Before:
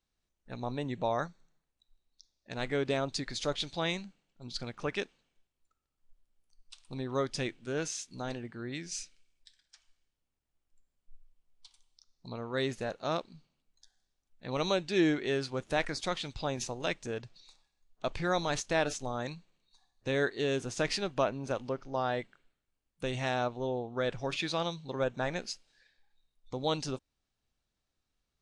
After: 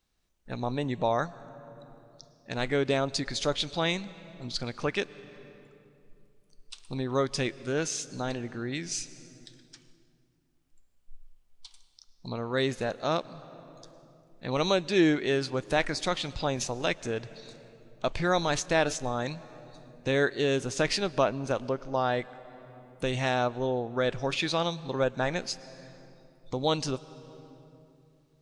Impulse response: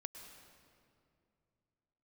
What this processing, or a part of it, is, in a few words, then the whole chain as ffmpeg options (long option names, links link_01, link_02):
compressed reverb return: -filter_complex "[0:a]asplit=2[link_01][link_02];[1:a]atrim=start_sample=2205[link_03];[link_02][link_03]afir=irnorm=-1:irlink=0,acompressor=threshold=-46dB:ratio=6,volume=-0.5dB[link_04];[link_01][link_04]amix=inputs=2:normalize=0,volume=3.5dB"